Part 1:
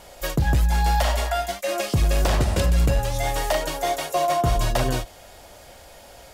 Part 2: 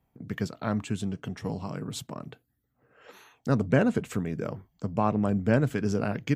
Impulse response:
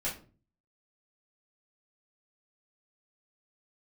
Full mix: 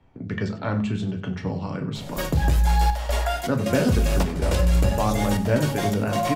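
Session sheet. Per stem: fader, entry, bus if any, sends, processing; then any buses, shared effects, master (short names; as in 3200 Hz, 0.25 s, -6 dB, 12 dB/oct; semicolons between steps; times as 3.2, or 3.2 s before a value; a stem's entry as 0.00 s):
+1.0 dB, 1.95 s, send -11.5 dB, echo send -18 dB, flange 0.63 Hz, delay 7.4 ms, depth 8.7 ms, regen -51%; step gate "xxxxx.xx.xxx." 79 bpm -12 dB
-2.0 dB, 0.00 s, send -4 dB, echo send -13.5 dB, LPF 4300 Hz 12 dB/oct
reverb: on, RT60 0.40 s, pre-delay 3 ms
echo: feedback echo 95 ms, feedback 35%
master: three-band squash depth 40%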